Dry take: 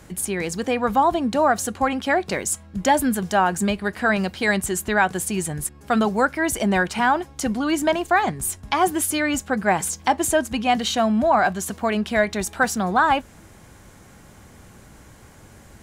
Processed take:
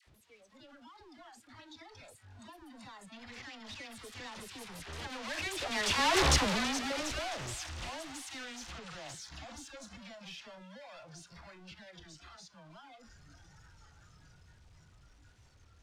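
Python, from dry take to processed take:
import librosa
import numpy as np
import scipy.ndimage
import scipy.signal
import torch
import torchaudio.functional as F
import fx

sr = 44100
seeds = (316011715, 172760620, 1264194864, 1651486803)

y = np.sign(x) * np.sqrt(np.mean(np.square(x)))
y = fx.doppler_pass(y, sr, speed_mps=52, closest_m=10.0, pass_at_s=6.23)
y = fx.dynamic_eq(y, sr, hz=210.0, q=1.0, threshold_db=-49.0, ratio=4.0, max_db=-6)
y = scipy.signal.sosfilt(scipy.signal.butter(2, 4100.0, 'lowpass', fs=sr, output='sos'), y)
y = fx.high_shelf(y, sr, hz=3200.0, db=11.5)
y = fx.echo_thinned(y, sr, ms=334, feedback_pct=71, hz=580.0, wet_db=-17.5)
y = fx.noise_reduce_blind(y, sr, reduce_db=12)
y = fx.dispersion(y, sr, late='lows', ms=70.0, hz=870.0)
y = fx.record_warp(y, sr, rpm=33.33, depth_cents=100.0)
y = F.gain(torch.from_numpy(y), -2.0).numpy()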